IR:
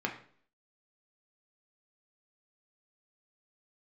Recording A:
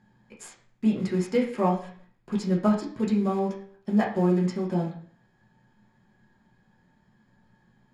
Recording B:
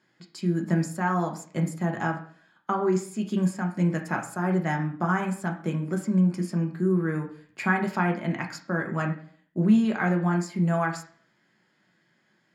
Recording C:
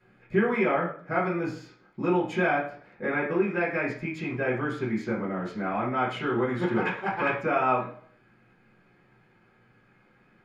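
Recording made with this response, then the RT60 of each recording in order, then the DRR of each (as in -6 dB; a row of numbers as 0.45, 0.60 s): B; 0.50, 0.50, 0.50 s; -3.5, 1.0, -10.5 dB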